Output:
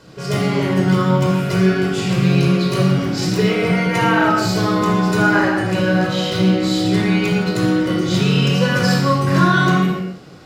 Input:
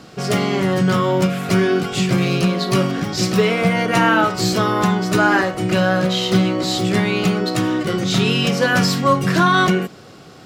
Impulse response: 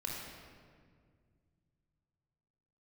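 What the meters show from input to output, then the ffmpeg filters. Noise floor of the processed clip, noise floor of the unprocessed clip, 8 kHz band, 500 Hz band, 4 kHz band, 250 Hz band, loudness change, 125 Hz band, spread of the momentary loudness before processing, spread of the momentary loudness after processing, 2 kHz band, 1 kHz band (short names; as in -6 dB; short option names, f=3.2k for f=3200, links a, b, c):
-29 dBFS, -41 dBFS, -3.0 dB, -0.5 dB, -1.5 dB, +2.0 dB, +1.0 dB, +3.5 dB, 4 LU, 4 LU, 0.0 dB, -1.0 dB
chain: -filter_complex "[1:a]atrim=start_sample=2205,afade=t=out:st=0.38:d=0.01,atrim=end_sample=17199[a];[0:a][a]afir=irnorm=-1:irlink=0,volume=-2dB"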